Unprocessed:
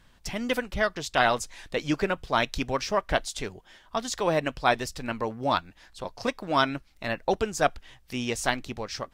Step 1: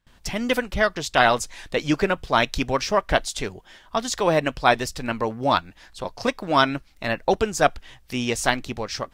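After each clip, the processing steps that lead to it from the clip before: gate with hold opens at -50 dBFS; gain +5 dB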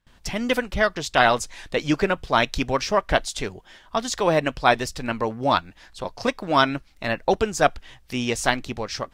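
high shelf 12000 Hz -5 dB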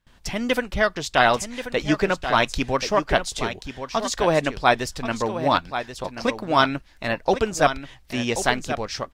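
echo 1.083 s -10 dB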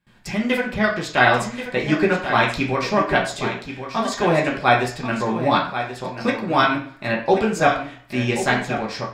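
reverb RT60 0.50 s, pre-delay 3 ms, DRR -2.5 dB; gain -3.5 dB

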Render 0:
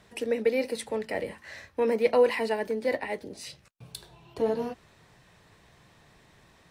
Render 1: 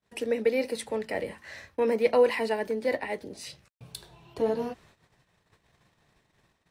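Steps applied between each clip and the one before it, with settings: gate -56 dBFS, range -32 dB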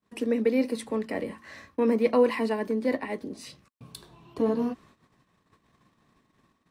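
small resonant body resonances 250/1100 Hz, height 12 dB, ringing for 25 ms; gain -3 dB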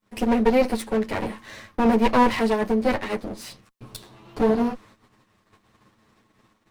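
minimum comb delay 9.3 ms; gain +6.5 dB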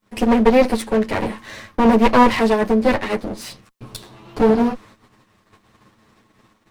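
Doppler distortion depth 0.22 ms; gain +5.5 dB

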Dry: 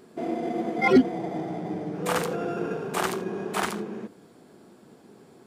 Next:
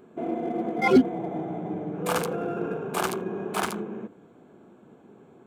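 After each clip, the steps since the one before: Wiener smoothing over 9 samples; high shelf 8200 Hz +4.5 dB; notch 1900 Hz, Q 7.4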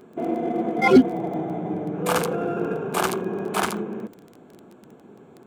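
crackle 14/s -38 dBFS; gain +4 dB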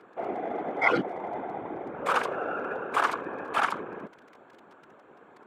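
in parallel at -2 dB: compressor, threshold -30 dBFS, peak gain reduction 19.5 dB; on the sum: whisperiser; band-pass 1400 Hz, Q 1.2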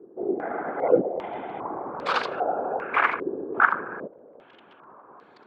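stepped low-pass 2.5 Hz 380–4400 Hz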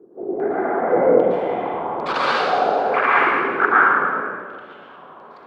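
plate-style reverb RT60 1.7 s, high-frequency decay 0.95×, pre-delay 0.1 s, DRR -7.5 dB

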